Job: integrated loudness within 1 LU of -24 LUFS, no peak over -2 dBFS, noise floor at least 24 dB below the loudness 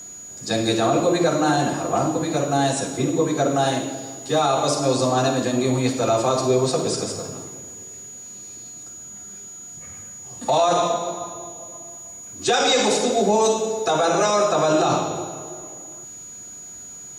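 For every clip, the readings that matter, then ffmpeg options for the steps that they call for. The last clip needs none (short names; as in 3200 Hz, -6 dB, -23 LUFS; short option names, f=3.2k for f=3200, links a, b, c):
steady tone 6800 Hz; tone level -36 dBFS; loudness -21.0 LUFS; peak -8.0 dBFS; loudness target -24.0 LUFS
-> -af "bandreject=f=6.8k:w=30"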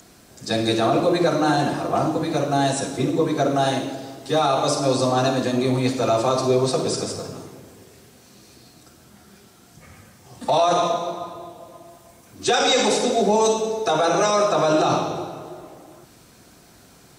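steady tone none; loudness -21.0 LUFS; peak -8.0 dBFS; loudness target -24.0 LUFS
-> -af "volume=-3dB"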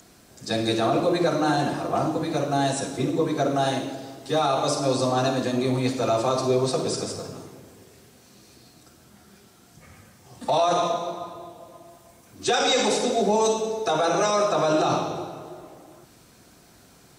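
loudness -24.0 LUFS; peak -11.0 dBFS; noise floor -54 dBFS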